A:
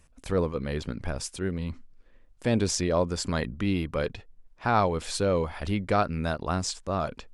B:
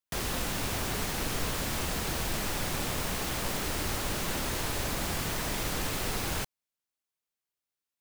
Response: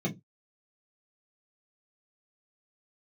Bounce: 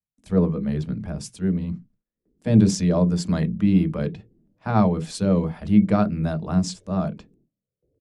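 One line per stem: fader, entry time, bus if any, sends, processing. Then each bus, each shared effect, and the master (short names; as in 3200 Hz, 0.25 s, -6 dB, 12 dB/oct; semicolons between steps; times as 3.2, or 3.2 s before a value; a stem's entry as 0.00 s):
-3.5 dB, 0.00 s, send -14 dB, low shelf 460 Hz +10.5 dB
-13.5 dB, 2.05 s, no send, steep low-pass 520 Hz 48 dB/oct; endless phaser -1 Hz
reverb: on, pre-delay 3 ms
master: HPF 140 Hz 6 dB/oct; gate with hold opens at -47 dBFS; three-band expander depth 40%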